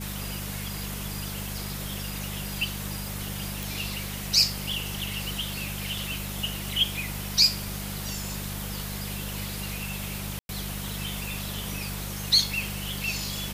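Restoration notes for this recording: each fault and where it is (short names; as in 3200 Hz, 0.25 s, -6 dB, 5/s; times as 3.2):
hum 50 Hz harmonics 4 -36 dBFS
3.63 pop
10.39–10.49 gap 0.101 s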